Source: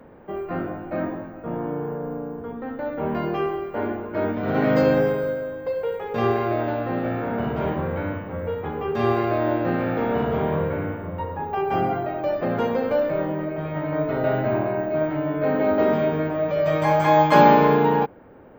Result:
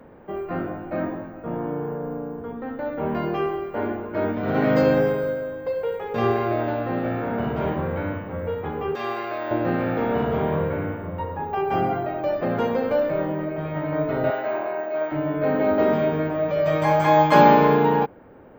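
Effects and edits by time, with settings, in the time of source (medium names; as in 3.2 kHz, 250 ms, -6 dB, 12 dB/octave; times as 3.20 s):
8.95–9.51 s: high-pass 1.1 kHz 6 dB/octave
14.30–15.12 s: high-pass 520 Hz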